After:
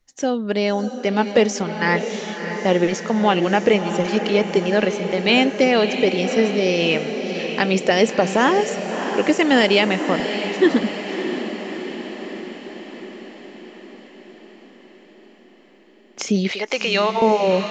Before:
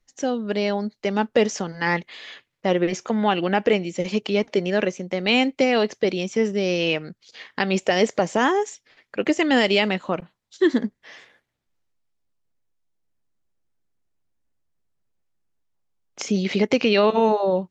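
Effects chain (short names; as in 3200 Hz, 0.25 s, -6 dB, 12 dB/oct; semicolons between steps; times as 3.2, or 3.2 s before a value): 16.51–17.22 HPF 690 Hz 12 dB/oct; on a send: diffused feedback echo 0.636 s, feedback 64%, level -8.5 dB; on the sum: gain +3 dB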